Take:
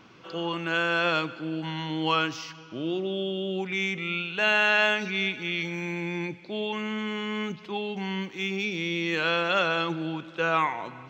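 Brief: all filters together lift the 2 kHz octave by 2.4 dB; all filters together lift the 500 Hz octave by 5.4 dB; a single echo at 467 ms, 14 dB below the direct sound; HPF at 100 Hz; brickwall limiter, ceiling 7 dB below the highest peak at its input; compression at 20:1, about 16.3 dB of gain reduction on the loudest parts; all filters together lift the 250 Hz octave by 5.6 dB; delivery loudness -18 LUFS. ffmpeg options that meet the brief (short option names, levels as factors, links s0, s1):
-af "highpass=100,equalizer=f=250:t=o:g=7,equalizer=f=500:t=o:g=4.5,equalizer=f=2000:t=o:g=3,acompressor=threshold=0.0282:ratio=20,alimiter=level_in=1.5:limit=0.0631:level=0:latency=1,volume=0.668,aecho=1:1:467:0.2,volume=7.94"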